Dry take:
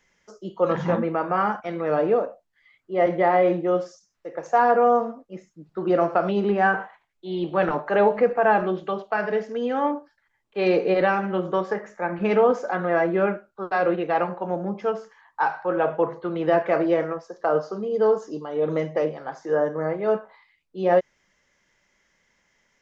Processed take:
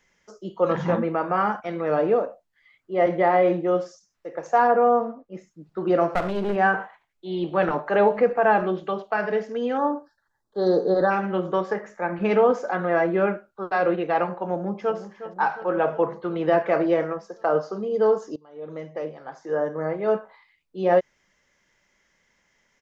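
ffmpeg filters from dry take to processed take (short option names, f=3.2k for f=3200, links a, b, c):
-filter_complex "[0:a]asettb=1/sr,asplit=3[a][b][c];[a]atrim=end=4.674[d];[b]atrim=start=4.67:end=5.35,asetpts=PTS-STARTPTS,afade=t=in:d=0.004:c=qsin,afade=t=out:st=0.676:d=0.004:c=qsin,aemphasis=mode=reproduction:type=75kf[e];[c]atrim=start=5.346[f];[d][e]acrossfade=d=0.004:c1=hsin:c2=qsin[g];[g][f]acrossfade=d=0.004:c1=qsin:c2=hsin,asettb=1/sr,asplit=3[h][i][j];[h]atrim=end=6.154[k];[i]atrim=start=6.15:end=6.56,asetpts=PTS-STARTPTS,afade=t=in:d=0.004:c=qsin,afade=t=out:st=0.406:d=0.004:c=qsin,aeval=exprs='clip(val(0),-1,0.0355)':c=same[l];[j]atrim=start=6.556[m];[k][l]acrossfade=d=0.004:c1=hsin:c2=qsin[n];[n][m]acrossfade=d=0.004:c1=qsin:c2=hsin,asplit=3[o][p][q];[o]afade=t=out:st=9.77:d=0.02[r];[p]asuperstop=centerf=2500:order=8:qfactor=1.3,afade=t=in:st=9.77:d=0.02,afade=t=out:st=11.1:d=0.02[s];[q]afade=t=in:st=11.1:d=0.02[t];[r][s][t]amix=inputs=3:normalize=0,asplit=2[u][v];[v]afade=t=in:st=14.53:d=0.01,afade=t=out:st=14.97:d=0.01,aecho=0:1:360|720|1080|1440|1800|2160|2520|2880|3240:0.237137|0.165996|0.116197|0.0813381|0.0569367|0.0398557|0.027899|0.0195293|0.0136705[w];[u][w]amix=inputs=2:normalize=0,asplit=2[x][y];[x]atrim=end=18.36,asetpts=PTS-STARTPTS,afade=t=out:st=18.356:d=0.004:c=hsin:silence=0.0794328[z];[y]atrim=start=18.36,asetpts=PTS-STARTPTS,afade=t=in:d=1.74:silence=0.0794328[aa];[z][aa]concat=n=2:v=0:a=1"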